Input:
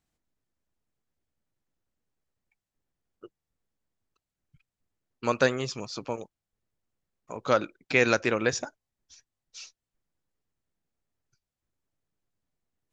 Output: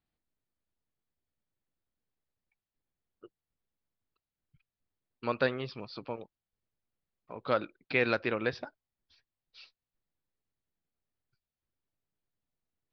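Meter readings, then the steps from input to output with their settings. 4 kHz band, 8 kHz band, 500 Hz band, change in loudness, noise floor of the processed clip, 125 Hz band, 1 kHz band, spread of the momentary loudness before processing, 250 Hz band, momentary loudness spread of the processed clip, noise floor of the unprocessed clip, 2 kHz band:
-6.5 dB, n/a, -5.5 dB, -5.5 dB, under -85 dBFS, -5.5 dB, -5.5 dB, 20 LU, -5.5 dB, 15 LU, under -85 dBFS, -5.5 dB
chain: steep low-pass 4800 Hz 72 dB/oct; gain -5.5 dB

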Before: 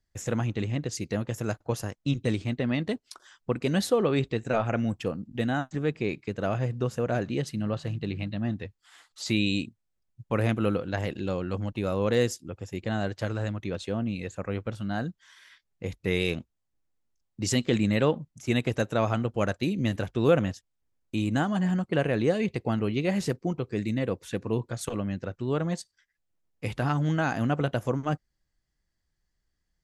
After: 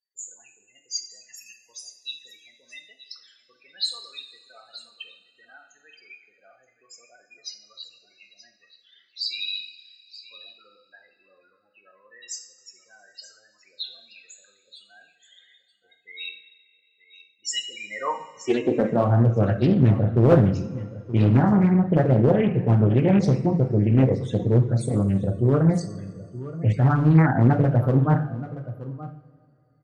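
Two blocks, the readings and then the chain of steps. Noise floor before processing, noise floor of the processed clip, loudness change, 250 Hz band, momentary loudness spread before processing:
-79 dBFS, -65 dBFS, +8.0 dB, +4.5 dB, 8 LU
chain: spectral repair 1.22–1.59, 250–1700 Hz after; in parallel at -0.5 dB: limiter -20.5 dBFS, peak gain reduction 9.5 dB; on the sum: loudest bins only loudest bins 16; high-pass sweep 3900 Hz -> 110 Hz, 17.43–19.19; hard clip -12 dBFS, distortion -23 dB; on a send: echo 0.926 s -15.5 dB; on the sum: two-slope reverb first 0.51 s, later 2.6 s, from -17 dB, DRR 3 dB; Doppler distortion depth 0.52 ms

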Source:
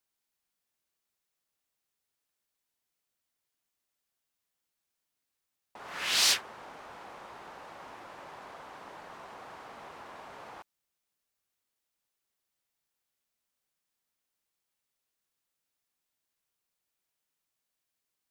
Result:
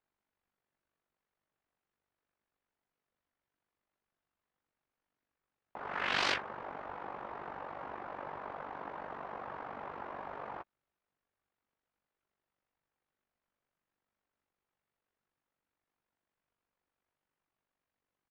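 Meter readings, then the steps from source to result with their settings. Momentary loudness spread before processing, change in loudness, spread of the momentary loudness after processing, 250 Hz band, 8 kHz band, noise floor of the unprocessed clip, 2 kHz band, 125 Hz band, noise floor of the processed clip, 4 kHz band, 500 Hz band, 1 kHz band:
14 LU, -13.0 dB, 13 LU, +4.5 dB, -20.0 dB, -85 dBFS, -0.5 dB, +4.0 dB, under -85 dBFS, -10.0 dB, +4.5 dB, +3.5 dB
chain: LPF 1700 Hz 12 dB/oct; AM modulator 48 Hz, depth 60%; doubler 14 ms -13 dB; gain +7.5 dB

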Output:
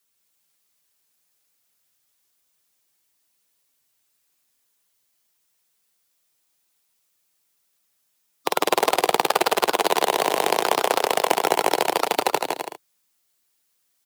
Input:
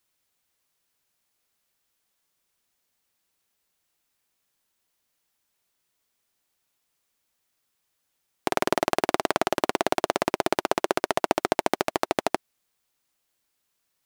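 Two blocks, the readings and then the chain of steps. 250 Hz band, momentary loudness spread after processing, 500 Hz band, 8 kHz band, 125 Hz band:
-1.0 dB, 6 LU, +4.0 dB, +8.0 dB, -3.5 dB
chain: bin magnitudes rounded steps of 15 dB; on a send: bouncing-ball echo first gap 0.16 s, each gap 0.65×, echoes 5; on the sum: frequency shift +78 Hz; in parallel at -8 dB: companded quantiser 4-bit; on the sum: high shelf 3900 Hz +7 dB; gain -1 dB

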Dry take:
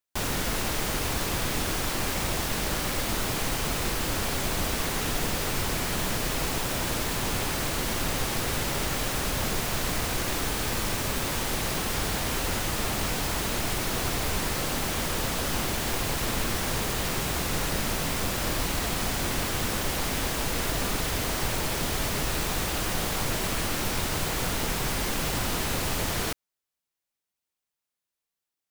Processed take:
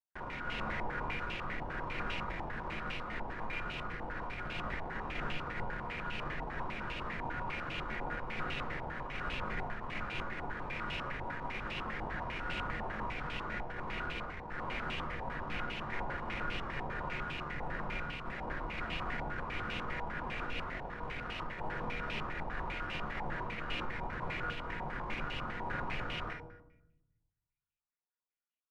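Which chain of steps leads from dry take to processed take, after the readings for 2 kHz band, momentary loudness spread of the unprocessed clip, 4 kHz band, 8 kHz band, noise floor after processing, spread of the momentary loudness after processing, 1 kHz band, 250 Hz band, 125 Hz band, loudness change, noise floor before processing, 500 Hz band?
-6.5 dB, 0 LU, -16.0 dB, under -35 dB, under -85 dBFS, 3 LU, -6.5 dB, -12.0 dB, -12.5 dB, -12.0 dB, under -85 dBFS, -11.5 dB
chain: resonator 480 Hz, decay 0.67 s, mix 80%; tube stage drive 31 dB, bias 0.7; shoebox room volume 260 m³, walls mixed, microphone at 0.95 m; stepped low-pass 10 Hz 870–2700 Hz; gain +1 dB

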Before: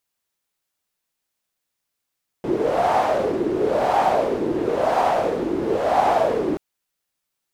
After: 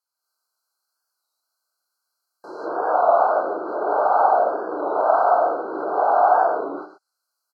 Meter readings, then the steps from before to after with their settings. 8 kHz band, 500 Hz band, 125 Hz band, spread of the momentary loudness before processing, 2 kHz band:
n/a, 0.0 dB, under -20 dB, 5 LU, 0.0 dB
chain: HPF 960 Hz 12 dB/oct; resonant high shelf 4800 Hz -6.5 dB, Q 1.5; echo 0.121 s -13.5 dB; non-linear reverb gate 0.3 s rising, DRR -8 dB; treble ducked by the level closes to 1300 Hz, closed at -22 dBFS; brick-wall FIR band-stop 1600–4000 Hz; record warp 33 1/3 rpm, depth 100 cents

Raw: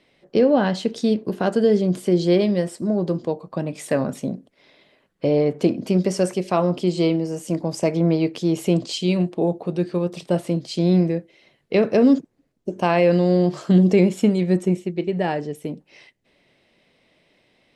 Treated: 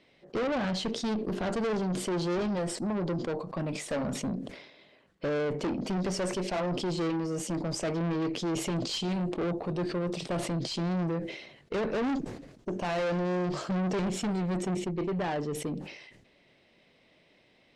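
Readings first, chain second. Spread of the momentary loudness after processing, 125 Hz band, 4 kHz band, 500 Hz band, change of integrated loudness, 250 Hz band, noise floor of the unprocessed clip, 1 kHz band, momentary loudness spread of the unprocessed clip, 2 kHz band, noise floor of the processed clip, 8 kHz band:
6 LU, -10.5 dB, -4.5 dB, -11.5 dB, -11.0 dB, -11.0 dB, -65 dBFS, -7.0 dB, 10 LU, -5.5 dB, -64 dBFS, -2.0 dB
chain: tube stage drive 26 dB, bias 0.25; LPF 7400 Hz 12 dB/oct; sustainer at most 64 dB/s; gain -1.5 dB

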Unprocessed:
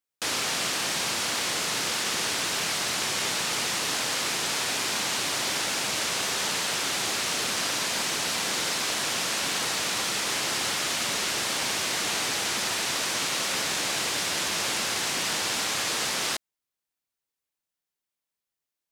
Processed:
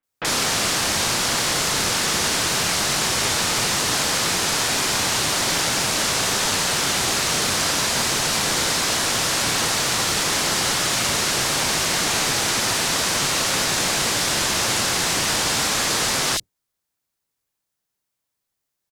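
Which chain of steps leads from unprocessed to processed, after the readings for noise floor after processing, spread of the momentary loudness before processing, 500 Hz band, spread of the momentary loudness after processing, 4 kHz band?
-80 dBFS, 0 LU, +7.5 dB, 0 LU, +6.0 dB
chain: octaver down 1 oct, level 0 dB; bands offset in time lows, highs 30 ms, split 2700 Hz; gain +7.5 dB

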